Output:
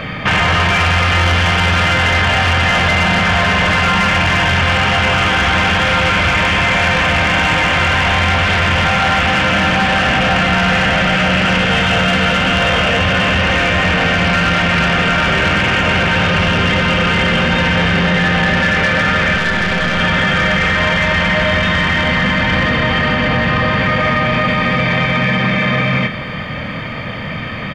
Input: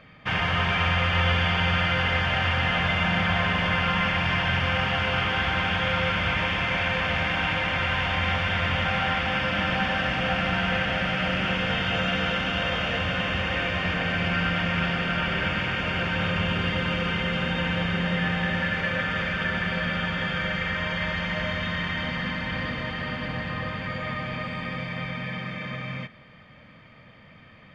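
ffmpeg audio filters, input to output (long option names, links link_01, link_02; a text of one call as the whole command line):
ffmpeg -i in.wav -filter_complex "[0:a]acrossover=split=4400[link_01][link_02];[link_02]acompressor=threshold=-59dB:ratio=4:attack=1:release=60[link_03];[link_01][link_03]amix=inputs=2:normalize=0,asoftclip=type=tanh:threshold=-23.5dB,asettb=1/sr,asplit=3[link_04][link_05][link_06];[link_04]atrim=end=19.364[link_07];[link_05]atrim=start=19.36:end=20,asetpts=PTS-STARTPTS,afade=type=in:duration=0.004:curve=qsin,afade=type=out:start_time=0.636:duration=0.004:curve=qsin,aeval=exprs='0.0668*(cos(1*acos(clip(val(0)/0.0668,-1,1)))-cos(1*PI/2))+0.0168*(cos(2*acos(clip(val(0)/0.0668,-1,1)))-cos(2*PI/2))':channel_layout=same[link_08];[link_06]atrim=start=19.996[link_09];[link_07][link_08]acrossfade=duration=0.004:curve1=hsin:curve2=qsin[link_10];[link_10][link_09]acrossfade=duration=0.004:curve1=qsin:curve2=hsin,asplit=2[link_11][link_12];[link_12]adelay=26,volume=-10dB[link_13];[link_11][link_13]amix=inputs=2:normalize=0,alimiter=level_in=33dB:limit=-1dB:release=50:level=0:latency=1,volume=-6.5dB" out.wav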